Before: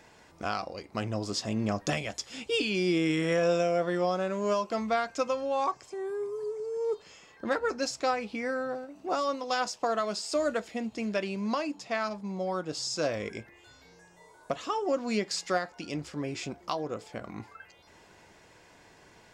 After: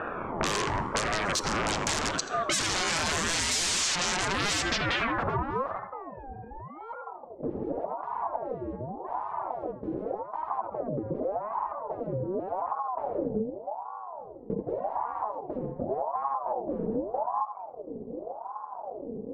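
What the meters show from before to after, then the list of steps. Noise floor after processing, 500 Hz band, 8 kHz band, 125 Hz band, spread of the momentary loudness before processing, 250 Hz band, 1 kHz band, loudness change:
−44 dBFS, −3.0 dB, +9.0 dB, +1.0 dB, 10 LU, −2.5 dB, +3.5 dB, +0.5 dB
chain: adaptive Wiener filter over 41 samples
sound drawn into the spectrogram fall, 0:03.51–0:03.96, 2,100–5,800 Hz −34 dBFS
parametric band 4,200 Hz −7.5 dB 1.2 octaves
on a send: tape delay 84 ms, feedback 42%, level −12 dB, low-pass 4,300 Hz
on the sum: low-pass that shuts in the quiet parts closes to 1,300 Hz, open at −28.5 dBFS
in parallel at +1.5 dB: brickwall limiter −28.5 dBFS, peak gain reduction 11 dB
on the sum: sine wavefolder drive 18 dB, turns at −15 dBFS
low-shelf EQ 290 Hz −8.5 dB
low-pass filter sweep 7,200 Hz → 110 Hz, 0:04.60–0:05.96
hum removal 295.2 Hz, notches 38
downward compressor 6 to 1, threshold −30 dBFS, peak gain reduction 16 dB
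ring modulator whose carrier an LFO sweeps 640 Hz, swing 50%, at 0.86 Hz
level +6 dB

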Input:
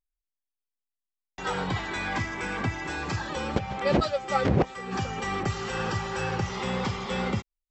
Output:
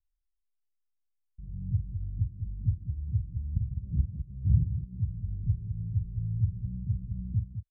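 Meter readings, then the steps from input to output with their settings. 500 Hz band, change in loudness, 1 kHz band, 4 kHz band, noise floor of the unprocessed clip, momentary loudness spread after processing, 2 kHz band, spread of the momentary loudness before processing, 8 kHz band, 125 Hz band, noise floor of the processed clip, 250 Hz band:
below −40 dB, −3.5 dB, below −40 dB, below −40 dB, below −85 dBFS, 7 LU, below −40 dB, 6 LU, below −35 dB, +3.5 dB, −79 dBFS, −10.0 dB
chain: inverse Chebyshev low-pass filter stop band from 700 Hz, stop band 80 dB
on a send: loudspeakers that aren't time-aligned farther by 15 metres −9 dB, 71 metres −9 dB
on the sum: level +6 dB

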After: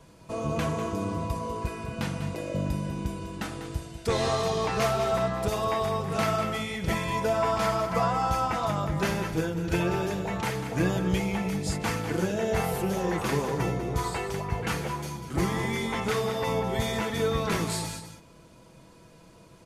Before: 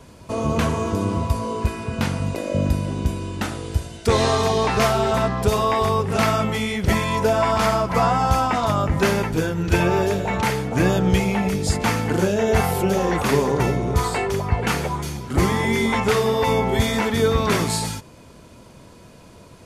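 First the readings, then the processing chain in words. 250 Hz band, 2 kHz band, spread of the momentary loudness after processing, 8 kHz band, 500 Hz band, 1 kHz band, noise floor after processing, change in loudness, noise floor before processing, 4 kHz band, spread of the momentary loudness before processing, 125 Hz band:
−7.5 dB, −7.5 dB, 7 LU, −7.5 dB, −7.5 dB, −7.5 dB, −53 dBFS, −7.5 dB, −45 dBFS, −7.5 dB, 7 LU, −8.0 dB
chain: comb filter 6.1 ms, depth 39%
single-tap delay 196 ms −10 dB
level −8.5 dB

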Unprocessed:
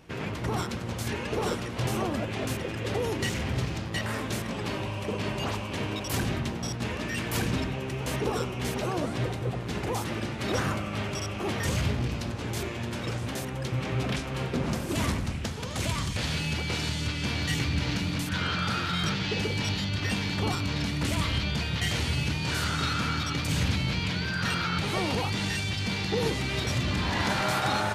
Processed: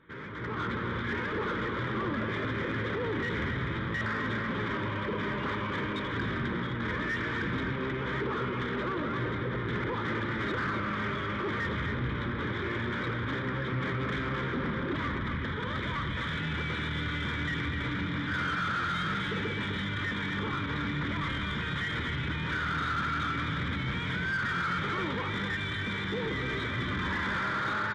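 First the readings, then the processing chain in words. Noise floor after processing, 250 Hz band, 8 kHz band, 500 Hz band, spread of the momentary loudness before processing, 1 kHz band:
−34 dBFS, −2.5 dB, below −15 dB, −3.0 dB, 5 LU, 0.0 dB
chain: brickwall limiter −25.5 dBFS, peak gain reduction 10.5 dB
bad sample-rate conversion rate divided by 4×, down filtered, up hold
pitch vibrato 7 Hz 25 cents
phaser with its sweep stopped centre 2,700 Hz, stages 6
single-tap delay 255 ms −7.5 dB
downsampling to 8,000 Hz
mid-hump overdrive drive 16 dB, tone 2,400 Hz, clips at −25.5 dBFS
automatic gain control gain up to 10 dB
level −7 dB

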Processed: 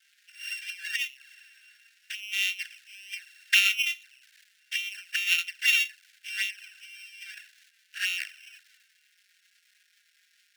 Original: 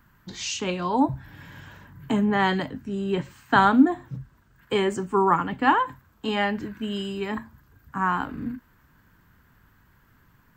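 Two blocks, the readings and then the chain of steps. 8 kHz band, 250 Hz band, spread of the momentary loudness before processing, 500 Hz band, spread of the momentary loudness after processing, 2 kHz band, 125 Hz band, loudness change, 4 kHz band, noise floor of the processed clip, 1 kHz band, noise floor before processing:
+3.0 dB, below −40 dB, 16 LU, below −40 dB, 22 LU, +2.0 dB, below −40 dB, −3.0 dB, +5.5 dB, −67 dBFS, −31.5 dB, −60 dBFS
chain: samples sorted by size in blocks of 16 samples
surface crackle 380 per second −38 dBFS
flanger swept by the level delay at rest 5.3 ms, full sweep at −19.5 dBFS
high-shelf EQ 5,200 Hz −11 dB
transient designer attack +2 dB, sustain +7 dB
Butterworth high-pass 1,500 Hz 96 dB per octave
expander for the loud parts 1.5 to 1, over −41 dBFS
level +6.5 dB

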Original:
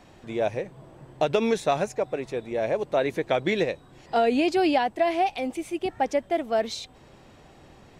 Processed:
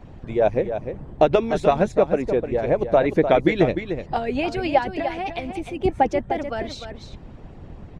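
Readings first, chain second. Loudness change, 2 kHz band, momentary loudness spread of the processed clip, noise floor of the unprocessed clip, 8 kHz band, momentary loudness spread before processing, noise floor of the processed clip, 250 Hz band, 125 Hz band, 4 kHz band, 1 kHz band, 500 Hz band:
+4.0 dB, +2.0 dB, 12 LU, −53 dBFS, can't be measured, 10 LU, −42 dBFS, +3.5 dB, +9.5 dB, −1.5 dB, +3.0 dB, +4.5 dB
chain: RIAA equalisation playback
harmonic and percussive parts rebalanced harmonic −16 dB
single-tap delay 301 ms −9 dB
level +6.5 dB

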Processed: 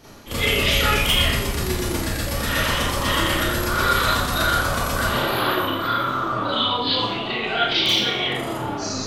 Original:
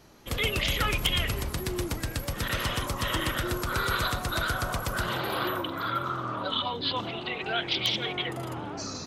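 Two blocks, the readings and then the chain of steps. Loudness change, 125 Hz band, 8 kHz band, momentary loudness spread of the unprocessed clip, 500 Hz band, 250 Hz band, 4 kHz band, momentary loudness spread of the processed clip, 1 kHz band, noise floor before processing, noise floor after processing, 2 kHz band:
+8.5 dB, +6.0 dB, +9.0 dB, 6 LU, +8.5 dB, +8.5 dB, +9.0 dB, 7 LU, +9.0 dB, −38 dBFS, −28 dBFS, +8.5 dB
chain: reversed playback
upward compression, threshold −34 dBFS
reversed playback
four-comb reverb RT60 0.66 s, combs from 27 ms, DRR −10 dB
level −1.5 dB

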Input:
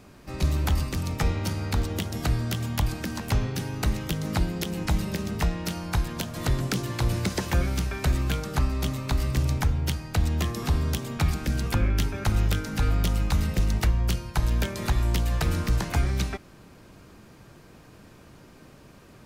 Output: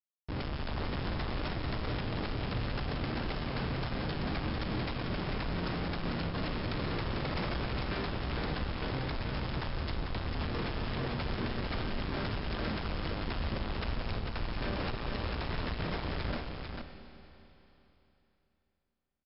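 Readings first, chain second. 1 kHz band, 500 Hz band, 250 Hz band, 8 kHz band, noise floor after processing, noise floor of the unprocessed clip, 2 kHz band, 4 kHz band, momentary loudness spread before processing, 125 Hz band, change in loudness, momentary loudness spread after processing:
−4.0 dB, −3.5 dB, −6.5 dB, below −40 dB, −78 dBFS, −51 dBFS, −4.0 dB, −5.0 dB, 4 LU, −10.5 dB, −8.5 dB, 2 LU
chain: each half-wave held at its own peak
Chebyshev high-pass filter 650 Hz, order 5
high-shelf EQ 3,200 Hz +3.5 dB
brickwall limiter −14.5 dBFS, peak gain reduction 8 dB
comparator with hysteresis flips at −27.5 dBFS
linear-phase brick-wall low-pass 5,400 Hz
single-tap delay 446 ms −5 dB
four-comb reverb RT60 3.3 s, combs from 26 ms, DRR 7.5 dB

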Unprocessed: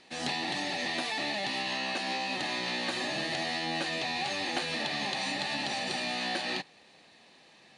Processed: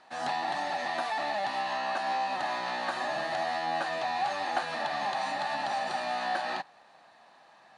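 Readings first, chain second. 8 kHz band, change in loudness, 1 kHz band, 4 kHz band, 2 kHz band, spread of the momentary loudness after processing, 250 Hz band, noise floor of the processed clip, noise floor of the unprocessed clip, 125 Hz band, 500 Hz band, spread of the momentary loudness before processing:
−7.0 dB, 0.0 dB, +7.0 dB, −7.0 dB, −1.0 dB, 2 LU, −7.0 dB, −58 dBFS, −59 dBFS, −7.0 dB, +3.0 dB, 1 LU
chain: flat-topped bell 1,000 Hz +14 dB
level −7 dB

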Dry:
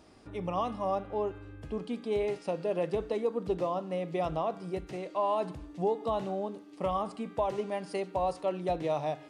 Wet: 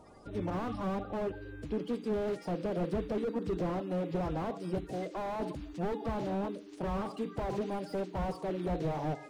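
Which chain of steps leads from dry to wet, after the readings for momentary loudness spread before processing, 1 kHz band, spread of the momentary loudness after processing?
7 LU, −5.5 dB, 4 LU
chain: spectral magnitudes quantised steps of 30 dB
slew-rate limiting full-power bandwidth 10 Hz
level +2.5 dB

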